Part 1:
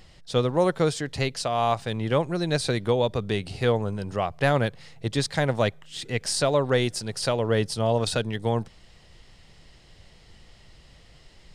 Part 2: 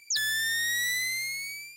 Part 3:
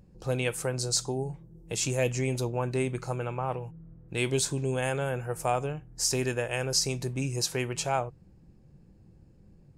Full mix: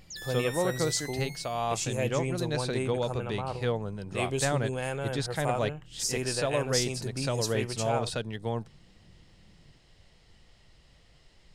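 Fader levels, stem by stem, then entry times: -7.0, -14.0, -3.5 dB; 0.00, 0.00, 0.00 s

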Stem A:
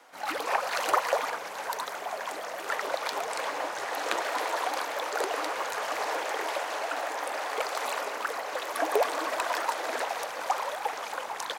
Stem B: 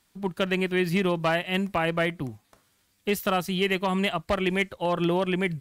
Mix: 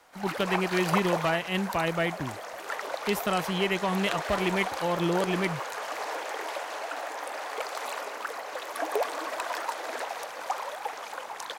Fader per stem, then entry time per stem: -3.0, -2.5 dB; 0.00, 0.00 s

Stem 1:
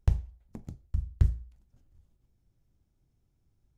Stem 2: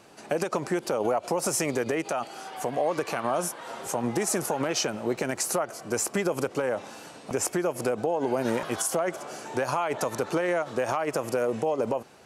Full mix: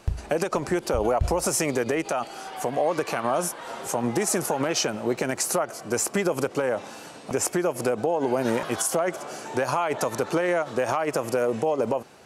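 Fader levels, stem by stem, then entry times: -2.5, +2.5 dB; 0.00, 0.00 s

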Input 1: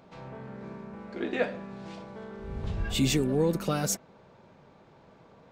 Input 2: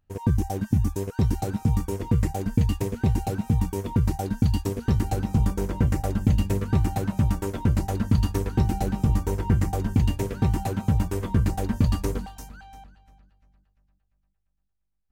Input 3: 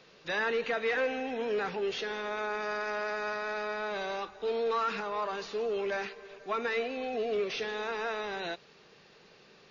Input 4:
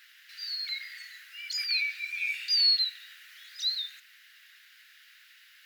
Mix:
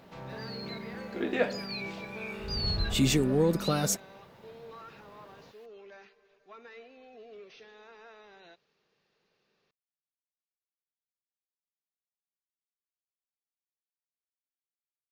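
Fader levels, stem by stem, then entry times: +0.5 dB, off, -18.0 dB, -11.0 dB; 0.00 s, off, 0.00 s, 0.00 s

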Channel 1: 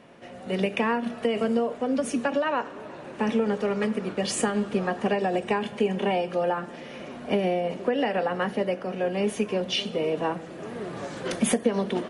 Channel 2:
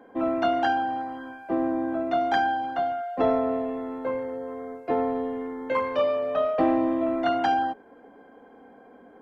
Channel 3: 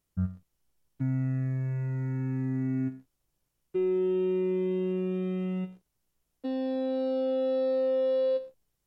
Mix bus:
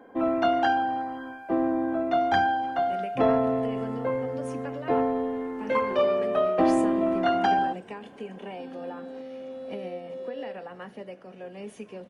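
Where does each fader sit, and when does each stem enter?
-14.0, +0.5, -11.0 dB; 2.40, 0.00, 2.15 s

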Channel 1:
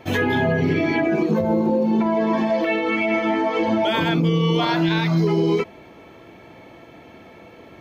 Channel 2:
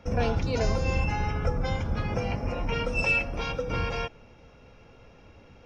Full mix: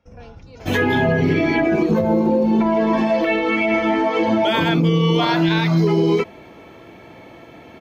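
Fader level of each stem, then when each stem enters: +2.5, -14.5 dB; 0.60, 0.00 s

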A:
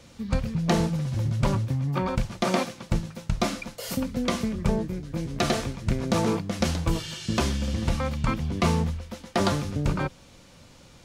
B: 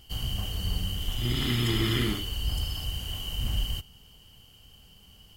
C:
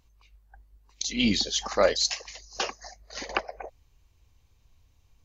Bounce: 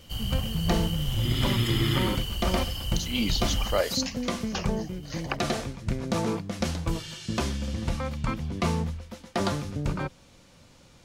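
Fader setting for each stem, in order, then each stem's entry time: -3.5, 0.0, -4.0 dB; 0.00, 0.00, 1.95 s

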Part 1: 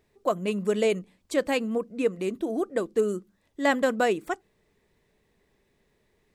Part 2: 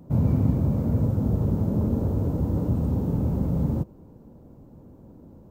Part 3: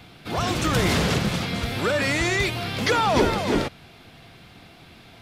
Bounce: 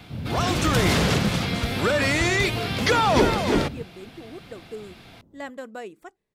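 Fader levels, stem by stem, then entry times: -13.0, -11.0, +1.0 dB; 1.75, 0.00, 0.00 s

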